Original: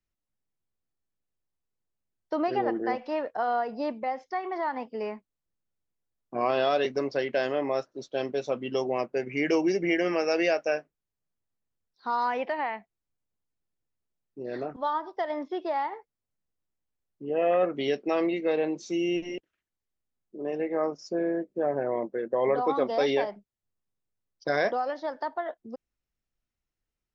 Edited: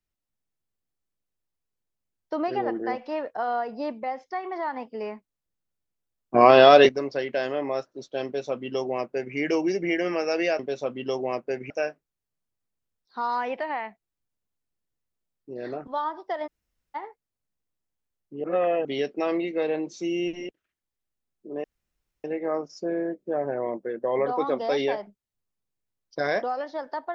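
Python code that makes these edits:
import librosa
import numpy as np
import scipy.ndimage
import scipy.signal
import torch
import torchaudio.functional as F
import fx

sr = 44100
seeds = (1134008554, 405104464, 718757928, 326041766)

y = fx.edit(x, sr, fx.clip_gain(start_s=6.34, length_s=0.55, db=12.0),
    fx.duplicate(start_s=8.25, length_s=1.11, to_s=10.59),
    fx.room_tone_fill(start_s=15.36, length_s=0.48, crossfade_s=0.02),
    fx.reverse_span(start_s=17.33, length_s=0.41),
    fx.insert_room_tone(at_s=20.53, length_s=0.6), tone=tone)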